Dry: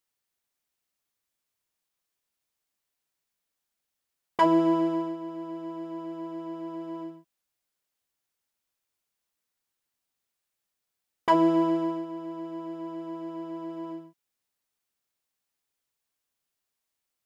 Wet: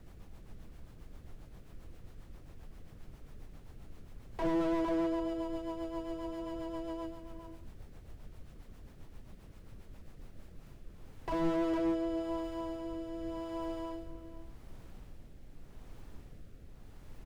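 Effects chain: HPF 400 Hz 24 dB/oct; high shelf 4600 Hz +8.5 dB; added noise brown -49 dBFS; outdoor echo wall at 78 m, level -8 dB; rotary speaker horn 7.5 Hz, later 0.85 Hz, at 10.05; slew limiter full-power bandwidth 13 Hz; gain +2 dB

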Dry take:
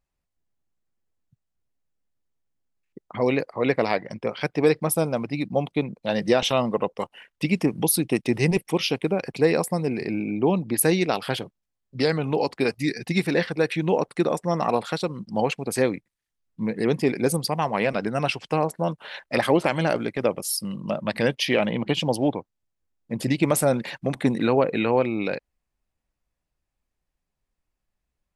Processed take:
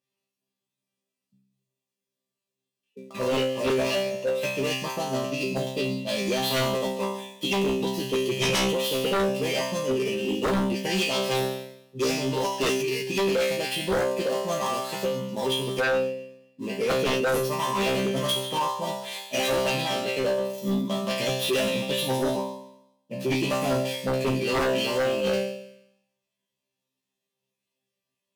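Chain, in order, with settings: switching dead time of 0.084 ms; HPF 160 Hz 12 dB/oct; tilt shelf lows +4.5 dB, about 1100 Hz; notch 1400 Hz, Q 12; in parallel at -1 dB: limiter -12.5 dBFS, peak gain reduction 7.5 dB; on the sum: resonant high shelf 1800 Hz +9 dB, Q 1.5; resonator bank C3 fifth, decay 0.81 s; formant shift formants +3 st; notch comb 750 Hz; sine folder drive 13 dB, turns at -16 dBFS; gain -4 dB

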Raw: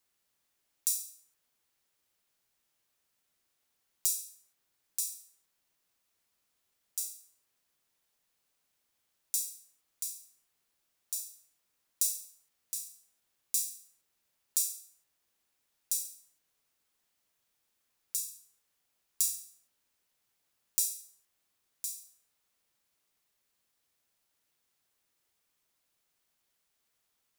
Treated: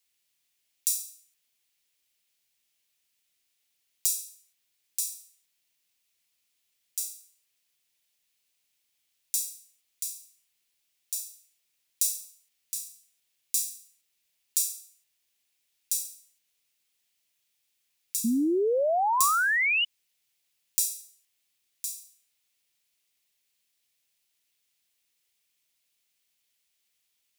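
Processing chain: resonant high shelf 1800 Hz +8.5 dB, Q 1.5; painted sound rise, 18.24–19.85, 220–3000 Hz -19 dBFS; gain -5.5 dB

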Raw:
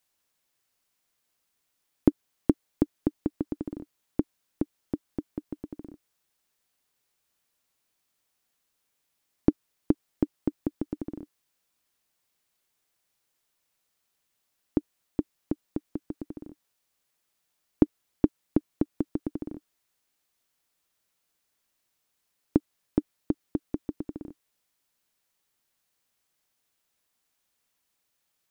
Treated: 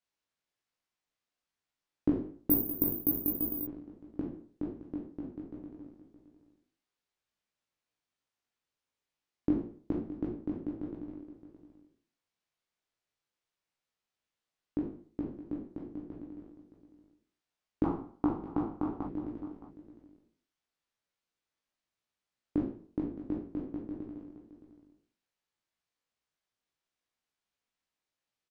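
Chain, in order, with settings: spectral trails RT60 0.50 s; 17.84–19.07 band shelf 1000 Hz +15 dB 1.1 oct; chorus 2.9 Hz, delay 17 ms, depth 3.5 ms; air absorption 81 m; echo 0.618 s -14 dB; 2.5–3.67 careless resampling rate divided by 3×, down filtered, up zero stuff; gain -7 dB

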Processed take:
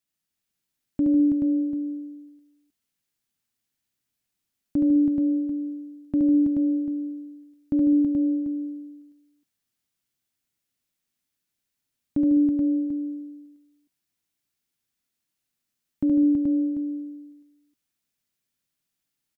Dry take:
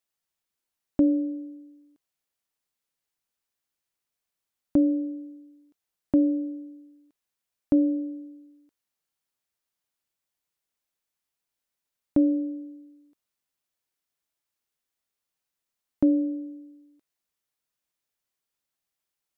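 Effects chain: ten-band EQ 125 Hz +5 dB, 250 Hz +6 dB, 500 Hz -5 dB, 1000 Hz -5 dB; limiter -17 dBFS, peak gain reduction 8 dB; tapped delay 71/150/205/326/429/741 ms -3.5/-9.5/-16.5/-4.5/-4/-12 dB

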